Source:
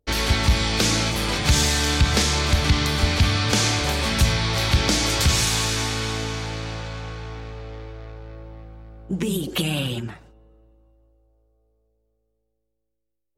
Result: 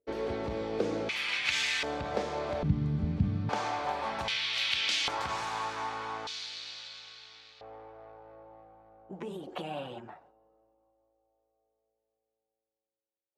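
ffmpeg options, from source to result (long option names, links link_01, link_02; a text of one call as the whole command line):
ffmpeg -i in.wav -af "asetnsamples=nb_out_samples=441:pad=0,asendcmd='1.09 bandpass f 2400;1.83 bandpass f 600;2.63 bandpass f 170;3.49 bandpass f 840;4.28 bandpass f 2900;5.08 bandpass f 940;6.27 bandpass f 4100;7.61 bandpass f 770',bandpass=frequency=460:width_type=q:width=2.5:csg=0" out.wav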